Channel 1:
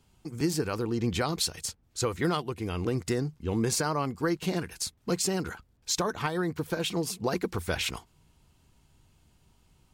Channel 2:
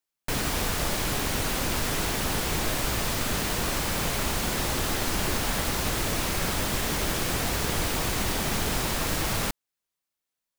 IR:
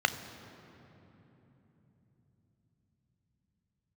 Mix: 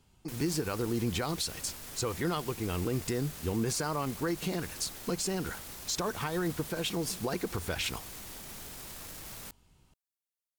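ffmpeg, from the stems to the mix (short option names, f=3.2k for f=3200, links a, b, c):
-filter_complex "[0:a]volume=-1dB[a];[1:a]aemphasis=mode=production:type=cd,alimiter=limit=-20dB:level=0:latency=1:release=20,volume=-15.5dB[b];[a][b]amix=inputs=2:normalize=0,alimiter=limit=-22dB:level=0:latency=1:release=67"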